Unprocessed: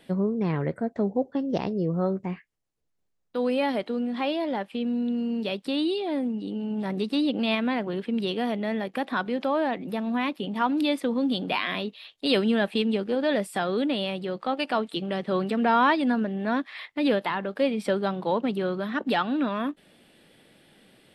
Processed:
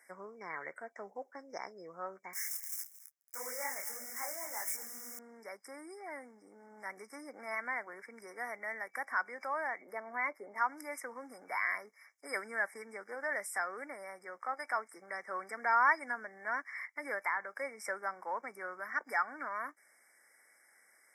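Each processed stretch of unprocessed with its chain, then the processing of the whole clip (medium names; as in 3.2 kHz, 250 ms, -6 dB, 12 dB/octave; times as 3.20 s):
2.33–5.19 s: zero-crossing glitches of -22.5 dBFS + delay 225 ms -16.5 dB + detune thickener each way 59 cents
9.81–10.58 s: treble shelf 3.6 kHz -9.5 dB + small resonant body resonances 400/590/2100/3400 Hz, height 9 dB, ringing for 25 ms
whole clip: FFT band-reject 2.3–5 kHz; high-pass 1.4 kHz 12 dB/octave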